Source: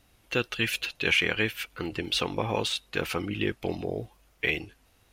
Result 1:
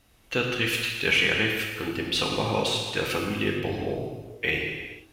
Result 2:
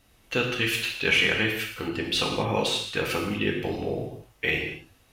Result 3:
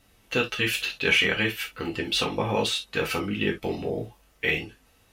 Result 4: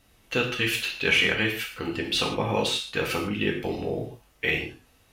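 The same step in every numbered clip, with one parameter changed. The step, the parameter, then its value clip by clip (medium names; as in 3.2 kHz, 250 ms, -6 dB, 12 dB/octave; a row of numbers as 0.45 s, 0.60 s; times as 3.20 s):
gated-style reverb, gate: 500 ms, 280 ms, 90 ms, 180 ms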